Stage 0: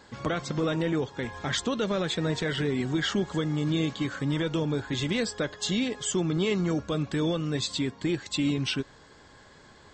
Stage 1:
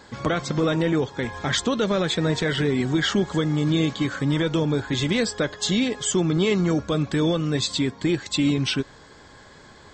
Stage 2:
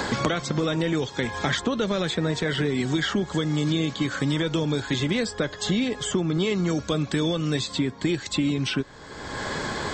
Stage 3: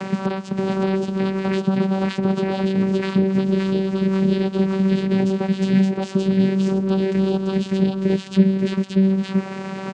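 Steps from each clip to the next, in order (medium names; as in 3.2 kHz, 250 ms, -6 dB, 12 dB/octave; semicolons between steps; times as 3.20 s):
band-stop 2.8 kHz, Q 25; trim +5.5 dB
three bands compressed up and down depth 100%; trim -3 dB
multi-tap echo 512/569/576 ms -14/-3/-5 dB; vocoder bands 8, saw 192 Hz; trim +3.5 dB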